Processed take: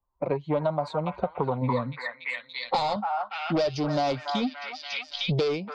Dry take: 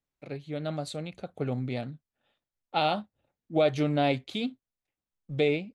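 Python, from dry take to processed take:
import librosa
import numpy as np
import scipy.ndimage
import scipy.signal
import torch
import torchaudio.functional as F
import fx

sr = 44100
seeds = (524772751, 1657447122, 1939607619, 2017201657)

y = fx.bin_expand(x, sr, power=1.5)
y = fx.recorder_agc(y, sr, target_db=-25.0, rise_db_per_s=11.0, max_gain_db=30)
y = 10.0 ** (-29.0 / 20.0) * np.tanh(y / 10.0 ** (-29.0 / 20.0))
y = fx.peak_eq(y, sr, hz=620.0, db=9.0, octaves=1.7)
y = fx.notch(y, sr, hz=1700.0, q=7.9)
y = fx.echo_stepped(y, sr, ms=286, hz=1200.0, octaves=0.7, feedback_pct=70, wet_db=-3)
y = fx.filter_sweep_lowpass(y, sr, from_hz=960.0, to_hz=5000.0, start_s=1.69, end_s=2.65, q=6.8)
y = fx.ripple_eq(y, sr, per_octave=1.0, db=14, at=(1.61, 2.96))
y = fx.band_squash(y, sr, depth_pct=100)
y = y * 10.0 ** (1.5 / 20.0)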